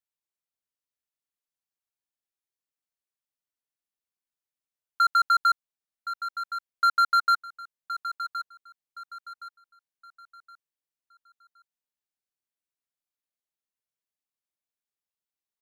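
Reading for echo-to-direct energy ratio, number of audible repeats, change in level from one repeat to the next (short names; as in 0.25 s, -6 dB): -11.0 dB, 3, -9.5 dB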